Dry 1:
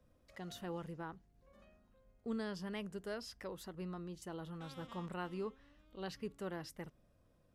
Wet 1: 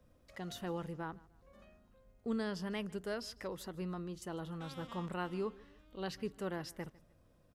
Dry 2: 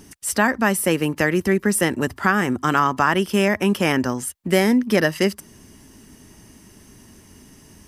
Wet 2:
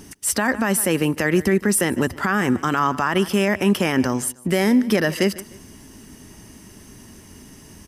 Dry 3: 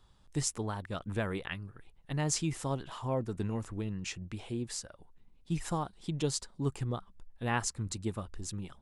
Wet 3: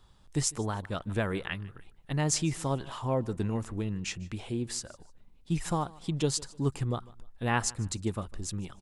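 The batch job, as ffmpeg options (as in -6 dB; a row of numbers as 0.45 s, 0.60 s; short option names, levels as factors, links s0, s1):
-filter_complex "[0:a]asplit=2[s0][s1];[s1]aecho=0:1:151|302:0.075|0.0255[s2];[s0][s2]amix=inputs=2:normalize=0,alimiter=level_in=3.76:limit=0.891:release=50:level=0:latency=1,volume=0.398"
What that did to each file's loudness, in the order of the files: +3.5 LU, 0.0 LU, +3.5 LU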